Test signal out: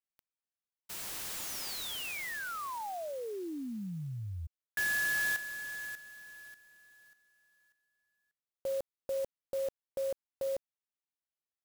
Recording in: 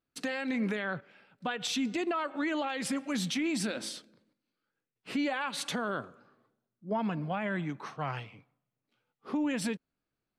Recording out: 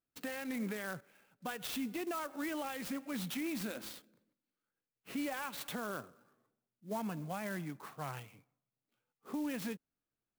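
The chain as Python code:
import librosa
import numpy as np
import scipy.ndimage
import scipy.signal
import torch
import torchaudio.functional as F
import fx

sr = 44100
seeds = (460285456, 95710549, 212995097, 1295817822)

y = fx.clock_jitter(x, sr, seeds[0], jitter_ms=0.039)
y = y * librosa.db_to_amplitude(-7.0)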